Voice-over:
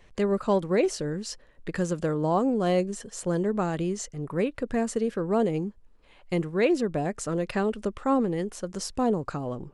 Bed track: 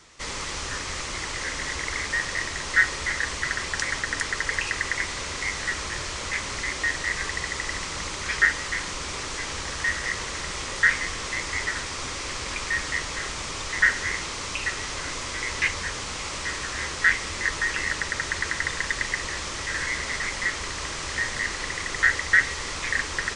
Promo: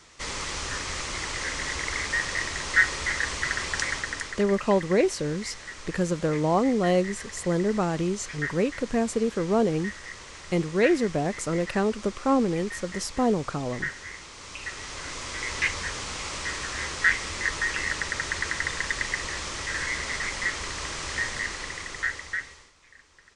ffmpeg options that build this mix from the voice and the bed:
-filter_complex "[0:a]adelay=4200,volume=1.19[s0];[1:a]volume=3.16,afade=t=out:st=3.83:d=0.61:silence=0.266073,afade=t=in:st=14.33:d=1.26:silence=0.298538,afade=t=out:st=21.2:d=1.52:silence=0.0473151[s1];[s0][s1]amix=inputs=2:normalize=0"

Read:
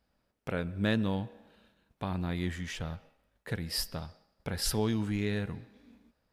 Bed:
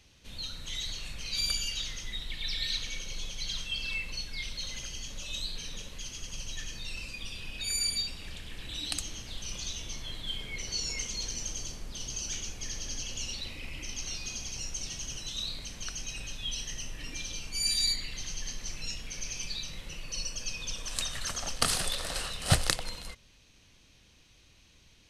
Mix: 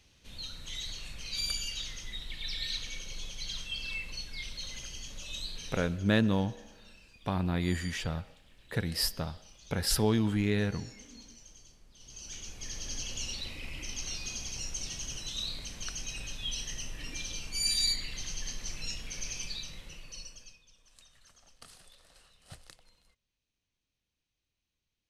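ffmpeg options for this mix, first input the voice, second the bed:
-filter_complex "[0:a]adelay=5250,volume=1.41[s0];[1:a]volume=5.31,afade=t=out:st=5.82:d=0.23:silence=0.177828,afade=t=in:st=11.97:d=1.01:silence=0.133352,afade=t=out:st=19.28:d=1.34:silence=0.0530884[s1];[s0][s1]amix=inputs=2:normalize=0"

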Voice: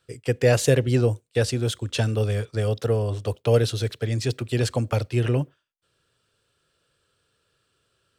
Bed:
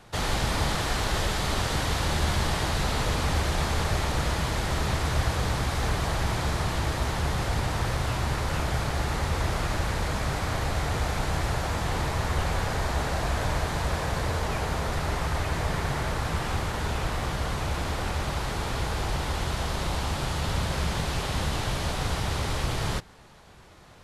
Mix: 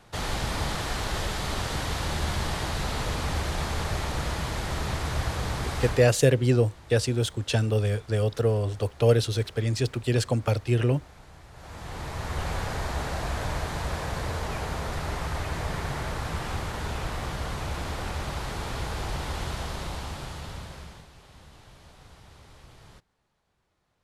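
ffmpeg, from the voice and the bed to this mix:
-filter_complex "[0:a]adelay=5550,volume=0.891[s0];[1:a]volume=6.31,afade=t=out:st=5.87:d=0.24:silence=0.112202,afade=t=in:st=11.52:d=0.99:silence=0.112202,afade=t=out:st=19.45:d=1.64:silence=0.1[s1];[s0][s1]amix=inputs=2:normalize=0"

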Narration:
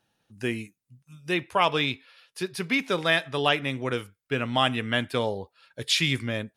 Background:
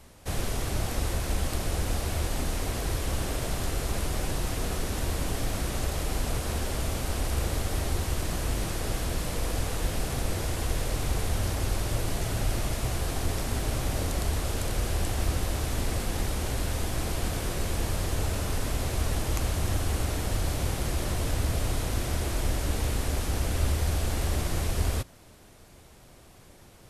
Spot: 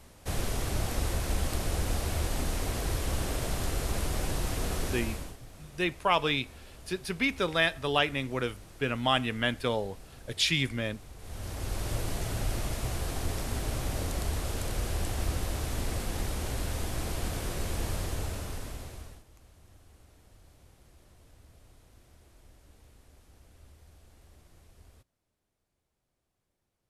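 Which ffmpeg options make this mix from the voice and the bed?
-filter_complex "[0:a]adelay=4500,volume=0.708[s0];[1:a]volume=5.62,afade=t=out:st=4.88:d=0.49:silence=0.11885,afade=t=in:st=11.18:d=0.72:silence=0.149624,afade=t=out:st=17.94:d=1.3:silence=0.0501187[s1];[s0][s1]amix=inputs=2:normalize=0"

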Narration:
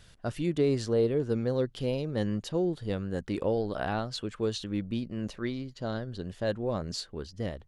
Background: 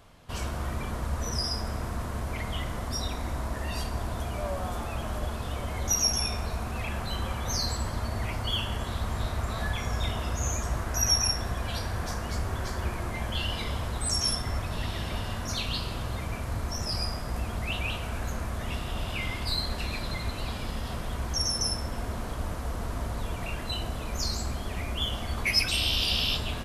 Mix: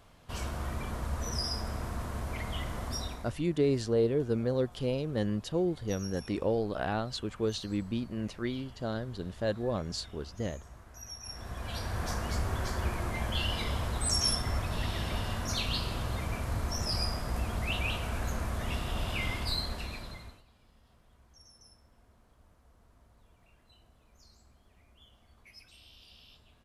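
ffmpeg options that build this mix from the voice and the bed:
-filter_complex "[0:a]adelay=3000,volume=0.891[s0];[1:a]volume=6.68,afade=t=out:st=2.93:d=0.45:silence=0.133352,afade=t=in:st=11.22:d=0.9:silence=0.1,afade=t=out:st=19.29:d=1.14:silence=0.0354813[s1];[s0][s1]amix=inputs=2:normalize=0"

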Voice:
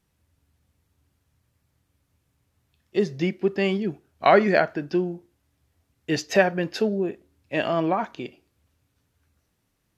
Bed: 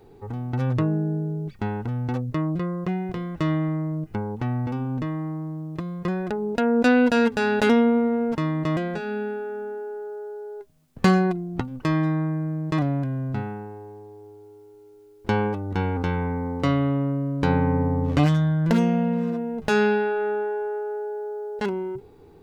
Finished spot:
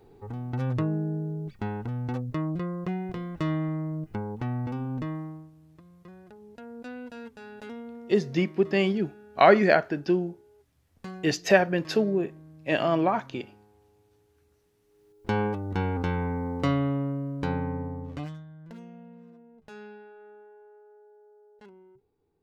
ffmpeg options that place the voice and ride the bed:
-filter_complex "[0:a]adelay=5150,volume=0.944[s0];[1:a]volume=5.62,afade=t=out:st=5.12:d=0.39:silence=0.125893,afade=t=in:st=14.83:d=0.58:silence=0.105925,afade=t=out:st=16.65:d=1.8:silence=0.0794328[s1];[s0][s1]amix=inputs=2:normalize=0"

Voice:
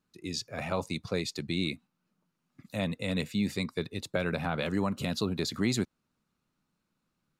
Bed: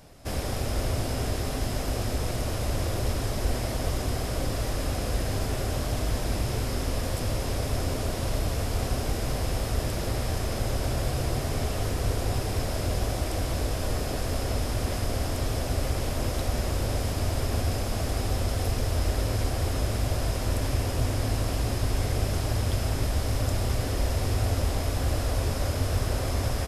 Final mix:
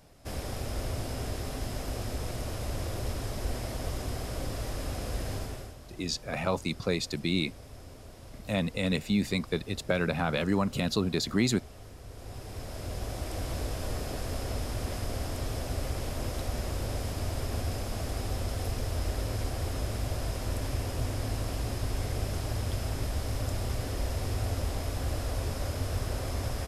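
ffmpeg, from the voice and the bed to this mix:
-filter_complex "[0:a]adelay=5750,volume=1.33[s0];[1:a]volume=2.51,afade=t=out:st=5.33:d=0.42:silence=0.211349,afade=t=in:st=12.08:d=1.43:silence=0.199526[s1];[s0][s1]amix=inputs=2:normalize=0"

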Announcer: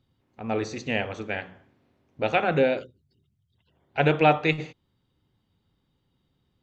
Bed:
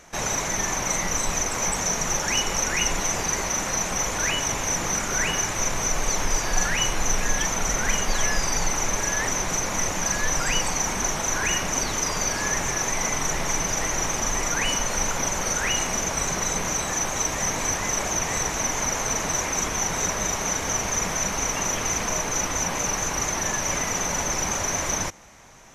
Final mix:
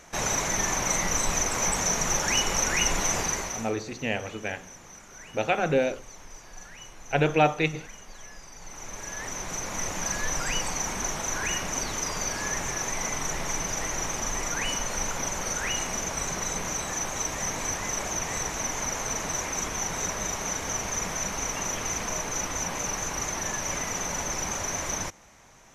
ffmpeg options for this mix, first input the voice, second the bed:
-filter_complex "[0:a]adelay=3150,volume=0.794[s0];[1:a]volume=6.31,afade=t=out:st=3.18:d=0.56:silence=0.0891251,afade=t=in:st=8.57:d=1.45:silence=0.141254[s1];[s0][s1]amix=inputs=2:normalize=0"

